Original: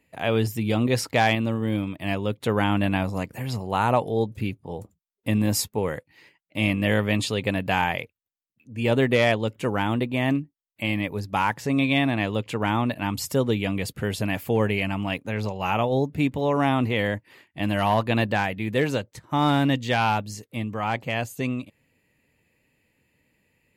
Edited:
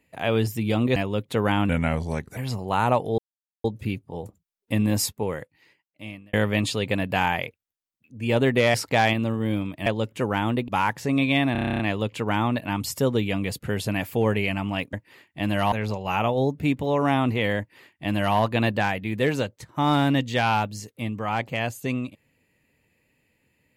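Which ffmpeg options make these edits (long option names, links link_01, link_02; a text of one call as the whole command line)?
ffmpeg -i in.wav -filter_complex "[0:a]asplit=20[link_01][link_02][link_03][link_04][link_05][link_06][link_07][link_08][link_09][link_10][link_11][link_12][link_13][link_14][link_15][link_16][link_17][link_18][link_19][link_20];[link_01]atrim=end=0.962[link_21];[link_02]atrim=start=2.078:end=2.814[link_22];[link_03]atrim=start=2.81:end=3.39,asetpts=PTS-STARTPTS,asetrate=37485,aresample=44100[link_23];[link_04]atrim=start=3.386:end=4.2,asetpts=PTS-STARTPTS,afade=type=out:start_time=0.81:duration=0.004:curve=hsin,apad=pad_dur=0.46[link_24];[link_05]atrim=start=4.2:end=6.89,asetpts=PTS-STARTPTS,afade=type=in:duration=0.004:curve=hsin,afade=type=out:start_time=1.36:duration=1.33[link_25];[link_06]atrim=start=6.89:end=9.302,asetpts=PTS-STARTPTS,afade=type=in:duration=0.004:curve=hsin[link_26];[link_07]atrim=start=0.958:end=2.082[link_27];[link_08]atrim=start=9.298:end=10.122[link_28];[link_09]atrim=start=11.288:end=12.162[link_29];[link_10]atrim=start=12.128:end=12.162[link_30];[link_11]atrim=start=12.128:end=12.162[link_31];[link_12]atrim=start=12.128:end=12.162[link_32];[link_13]atrim=start=12.128:end=12.162[link_33];[link_14]atrim=start=12.128:end=12.162[link_34];[link_15]atrim=start=12.128:end=12.162[link_35];[link_16]atrim=start=12.128:end=12.162[link_36];[link_17]atrim=start=12.128:end=12.162[link_37];[link_18]atrim=start=12.128:end=15.272[link_38];[link_19]atrim=start=17.128:end=17.922[link_39];[link_20]atrim=start=15.268[link_40];[link_21][link_22]acrossfade=duration=0.004:curve1=hsin:curve2=hsin[link_41];[link_41][link_23]acrossfade=duration=0.004:curve1=hsin:curve2=hsin[link_42];[link_24][link_25][link_26]concat=n=3:v=0:a=1[link_43];[link_42][link_43]acrossfade=duration=0.004:curve1=hsin:curve2=hsin[link_44];[link_44][link_27]acrossfade=duration=0.004:curve1=hsin:curve2=hsin[link_45];[link_45][link_28]acrossfade=duration=0.004:curve1=hsin:curve2=hsin[link_46];[link_46][link_29]acrossfade=duration=0.004:curve1=hsin:curve2=hsin[link_47];[link_47][link_30]acrossfade=duration=0.004:curve1=hsin:curve2=hsin[link_48];[link_48][link_31]acrossfade=duration=0.004:curve1=hsin:curve2=hsin[link_49];[link_49][link_32]acrossfade=duration=0.004:curve1=hsin:curve2=hsin[link_50];[link_50][link_33]acrossfade=duration=0.004:curve1=hsin:curve2=hsin[link_51];[link_51][link_34]acrossfade=duration=0.004:curve1=hsin:curve2=hsin[link_52];[link_52][link_35]acrossfade=duration=0.004:curve1=hsin:curve2=hsin[link_53];[link_53][link_36]acrossfade=duration=0.004:curve1=hsin:curve2=hsin[link_54];[link_54][link_37]acrossfade=duration=0.004:curve1=hsin:curve2=hsin[link_55];[link_55][link_38]acrossfade=duration=0.004:curve1=hsin:curve2=hsin[link_56];[link_56][link_39]acrossfade=duration=0.004:curve1=hsin:curve2=hsin[link_57];[link_57][link_40]acrossfade=duration=0.004:curve1=hsin:curve2=hsin" out.wav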